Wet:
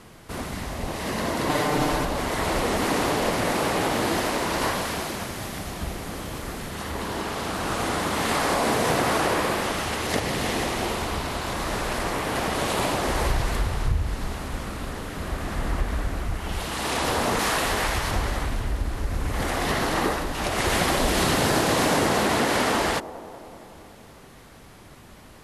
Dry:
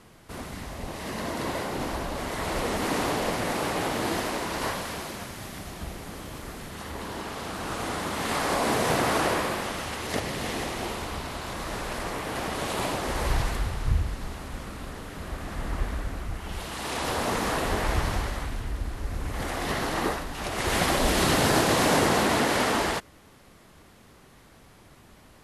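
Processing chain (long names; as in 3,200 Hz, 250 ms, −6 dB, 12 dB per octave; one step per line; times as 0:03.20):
downward compressor 2.5 to 1, threshold −26 dBFS, peak gain reduction 6 dB
0:01.49–0:02.05: comb filter 6.7 ms, depth 96%
0:17.39–0:18.11: tilt shelving filter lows −4.5 dB
delay with a band-pass on its return 189 ms, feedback 68%, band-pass 480 Hz, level −13.5 dB
level +5.5 dB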